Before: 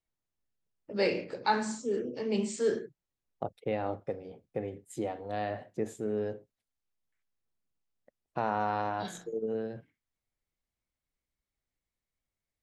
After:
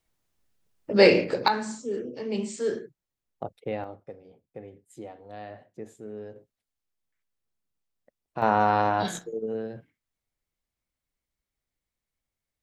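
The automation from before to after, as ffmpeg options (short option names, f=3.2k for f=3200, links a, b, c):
-af "asetnsamples=n=441:p=0,asendcmd='1.48 volume volume 0.5dB;3.84 volume volume -7dB;6.36 volume volume 0.5dB;8.42 volume volume 9dB;9.19 volume volume 2dB',volume=12dB"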